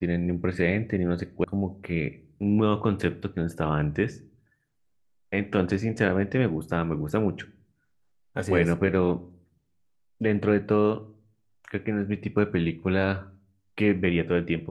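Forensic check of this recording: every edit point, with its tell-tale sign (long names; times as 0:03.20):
0:01.44: cut off before it has died away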